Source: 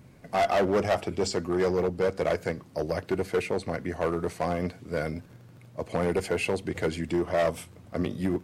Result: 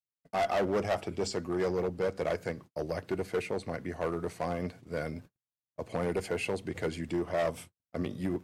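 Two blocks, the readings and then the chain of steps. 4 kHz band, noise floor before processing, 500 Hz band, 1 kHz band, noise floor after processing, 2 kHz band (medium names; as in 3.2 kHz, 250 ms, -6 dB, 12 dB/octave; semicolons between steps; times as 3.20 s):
-5.0 dB, -52 dBFS, -5.0 dB, -5.0 dB, under -85 dBFS, -5.0 dB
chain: gate -42 dBFS, range -55 dB; trim -5 dB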